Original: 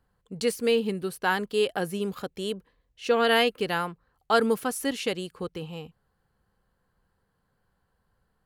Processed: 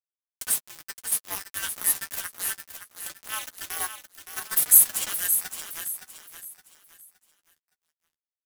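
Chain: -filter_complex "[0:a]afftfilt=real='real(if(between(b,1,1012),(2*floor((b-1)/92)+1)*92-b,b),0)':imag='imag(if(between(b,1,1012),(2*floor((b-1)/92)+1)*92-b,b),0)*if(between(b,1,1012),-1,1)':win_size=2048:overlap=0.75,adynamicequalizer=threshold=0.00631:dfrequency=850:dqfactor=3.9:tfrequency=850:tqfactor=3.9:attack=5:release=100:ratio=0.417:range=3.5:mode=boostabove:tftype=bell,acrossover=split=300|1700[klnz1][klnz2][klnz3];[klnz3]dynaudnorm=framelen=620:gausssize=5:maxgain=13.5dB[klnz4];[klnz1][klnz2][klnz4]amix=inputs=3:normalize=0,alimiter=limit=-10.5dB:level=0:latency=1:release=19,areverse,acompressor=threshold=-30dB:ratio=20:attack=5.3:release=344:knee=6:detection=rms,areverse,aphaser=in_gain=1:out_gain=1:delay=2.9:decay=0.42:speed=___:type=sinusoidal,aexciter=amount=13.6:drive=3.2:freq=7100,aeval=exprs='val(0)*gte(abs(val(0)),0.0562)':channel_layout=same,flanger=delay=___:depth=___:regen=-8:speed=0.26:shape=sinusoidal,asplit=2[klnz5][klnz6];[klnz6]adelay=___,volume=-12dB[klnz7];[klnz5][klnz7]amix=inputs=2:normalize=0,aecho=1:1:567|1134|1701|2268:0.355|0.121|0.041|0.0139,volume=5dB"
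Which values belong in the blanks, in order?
0.59, 2.6, 9.4, 13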